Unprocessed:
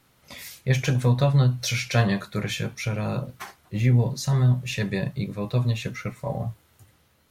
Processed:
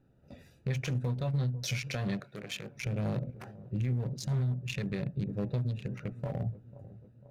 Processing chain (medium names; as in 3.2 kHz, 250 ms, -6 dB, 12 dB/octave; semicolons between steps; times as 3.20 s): local Wiener filter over 41 samples; compression 3:1, threshold -29 dBFS, peak gain reduction 10.5 dB; feedback echo behind a low-pass 495 ms, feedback 56%, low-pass 710 Hz, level -18 dB; peak limiter -24.5 dBFS, peak gain reduction 6.5 dB; 2.20–2.76 s: high-pass 540 Hz 6 dB/octave